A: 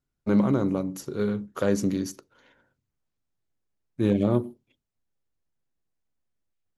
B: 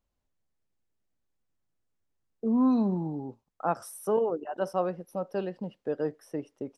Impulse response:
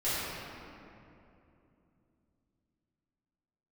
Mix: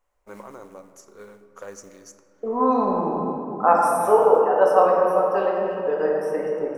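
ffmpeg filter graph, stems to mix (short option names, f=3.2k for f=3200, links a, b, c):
-filter_complex "[0:a]equalizer=f=6.1k:t=o:w=0.79:g=12,acrusher=bits=6:mode=log:mix=0:aa=0.000001,volume=-18.5dB,asplit=2[a][b];[b]volume=-19.5dB[c];[1:a]volume=-1dB,asplit=2[d][e];[e]volume=-3.5dB[f];[2:a]atrim=start_sample=2205[g];[c][f]amix=inputs=2:normalize=0[h];[h][g]afir=irnorm=-1:irlink=0[i];[a][d][i]amix=inputs=3:normalize=0,equalizer=f=125:t=o:w=1:g=-11,equalizer=f=250:t=o:w=1:g=-8,equalizer=f=500:t=o:w=1:g=6,equalizer=f=1k:t=o:w=1:g=9,equalizer=f=2k:t=o:w=1:g=7,equalizer=f=4k:t=o:w=1:g=-6,equalizer=f=8k:t=o:w=1:g=5"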